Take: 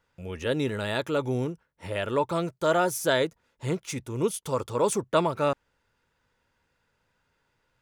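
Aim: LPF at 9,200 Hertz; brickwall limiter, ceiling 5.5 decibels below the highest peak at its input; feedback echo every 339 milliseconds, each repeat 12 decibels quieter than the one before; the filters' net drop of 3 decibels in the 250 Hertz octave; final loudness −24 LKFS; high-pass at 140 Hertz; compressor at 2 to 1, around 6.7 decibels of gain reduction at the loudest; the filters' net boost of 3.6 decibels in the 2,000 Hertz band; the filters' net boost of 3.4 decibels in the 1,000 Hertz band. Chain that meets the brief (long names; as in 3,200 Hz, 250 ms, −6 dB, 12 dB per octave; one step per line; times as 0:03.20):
high-pass filter 140 Hz
low-pass filter 9,200 Hz
parametric band 250 Hz −4 dB
parametric band 1,000 Hz +3.5 dB
parametric band 2,000 Hz +3.5 dB
downward compressor 2 to 1, threshold −29 dBFS
brickwall limiter −19.5 dBFS
repeating echo 339 ms, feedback 25%, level −12 dB
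level +9.5 dB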